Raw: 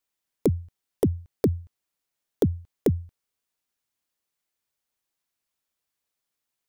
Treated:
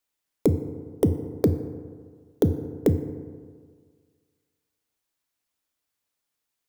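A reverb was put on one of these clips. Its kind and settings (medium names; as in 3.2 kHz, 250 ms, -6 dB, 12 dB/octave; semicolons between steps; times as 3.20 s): FDN reverb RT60 1.8 s, low-frequency decay 0.95×, high-frequency decay 0.4×, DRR 8.5 dB; trim +1 dB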